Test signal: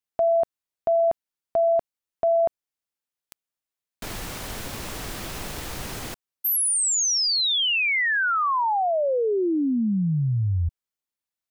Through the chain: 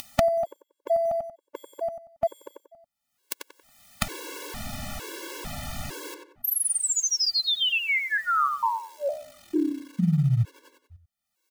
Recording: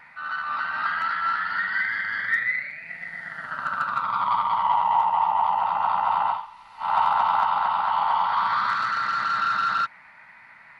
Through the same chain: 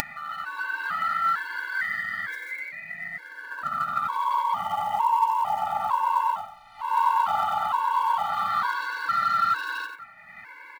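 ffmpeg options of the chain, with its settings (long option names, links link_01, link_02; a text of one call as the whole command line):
ffmpeg -i in.wav -filter_complex "[0:a]asplit=2[link_01][link_02];[link_02]adelay=92,lowpass=frequency=2300:poles=1,volume=-4dB,asplit=2[link_03][link_04];[link_04]adelay=92,lowpass=frequency=2300:poles=1,volume=0.3,asplit=2[link_05][link_06];[link_06]adelay=92,lowpass=frequency=2300:poles=1,volume=0.3,asplit=2[link_07][link_08];[link_08]adelay=92,lowpass=frequency=2300:poles=1,volume=0.3[link_09];[link_01][link_03][link_05][link_07][link_09]amix=inputs=5:normalize=0,asplit=2[link_10][link_11];[link_11]acrusher=bits=4:mode=log:mix=0:aa=0.000001,volume=-7dB[link_12];[link_10][link_12]amix=inputs=2:normalize=0,acompressor=mode=upward:threshold=-31dB:ratio=4:attack=60:release=573:knee=2.83:detection=peak,afftfilt=real='re*gt(sin(2*PI*1.1*pts/sr)*(1-2*mod(floor(b*sr/1024/290),2)),0)':imag='im*gt(sin(2*PI*1.1*pts/sr)*(1-2*mod(floor(b*sr/1024/290),2)),0)':win_size=1024:overlap=0.75,volume=-3.5dB" out.wav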